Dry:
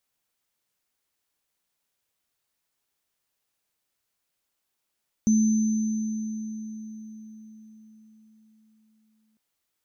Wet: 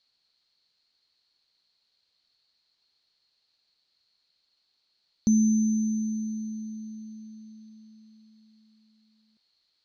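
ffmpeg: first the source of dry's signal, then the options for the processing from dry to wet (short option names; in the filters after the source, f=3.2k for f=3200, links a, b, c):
-f lavfi -i "aevalsrc='0.158*pow(10,-3*t/4.88)*sin(2*PI*218*t)+0.0316*pow(10,-3*t/3.56)*sin(2*PI*6140*t)':d=4.1:s=44100"
-af "lowpass=f=4.3k:t=q:w=15"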